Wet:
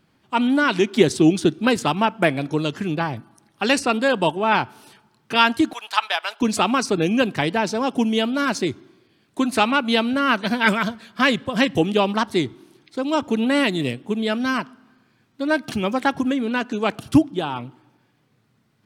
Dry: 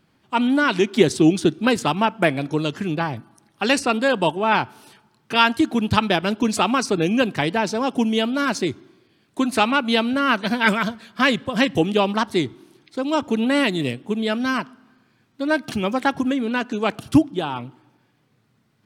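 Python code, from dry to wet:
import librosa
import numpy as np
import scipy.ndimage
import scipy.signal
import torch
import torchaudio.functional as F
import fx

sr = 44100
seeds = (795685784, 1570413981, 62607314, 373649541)

y = fx.highpass(x, sr, hz=770.0, slope=24, at=(5.73, 6.41))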